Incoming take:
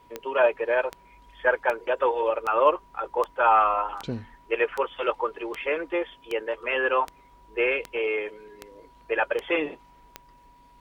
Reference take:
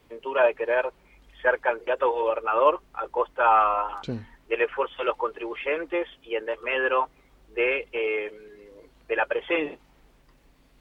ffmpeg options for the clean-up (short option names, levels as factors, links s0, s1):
-af "adeclick=t=4,bandreject=f=970:w=30"